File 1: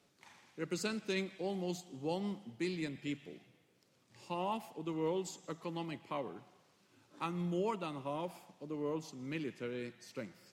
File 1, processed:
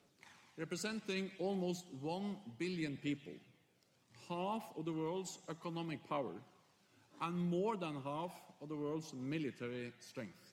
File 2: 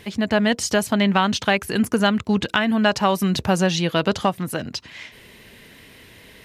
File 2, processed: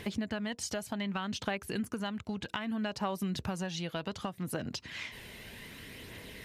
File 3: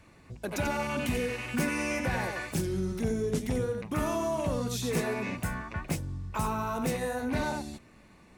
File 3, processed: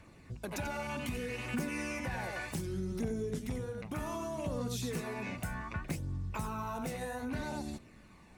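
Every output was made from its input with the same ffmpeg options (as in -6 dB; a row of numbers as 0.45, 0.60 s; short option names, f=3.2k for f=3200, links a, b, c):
-af "acompressor=threshold=-33dB:ratio=5,aphaser=in_gain=1:out_gain=1:delay=1.5:decay=0.29:speed=0.65:type=triangular,volume=-2dB"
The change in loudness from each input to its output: -2.5, -17.0, -6.5 LU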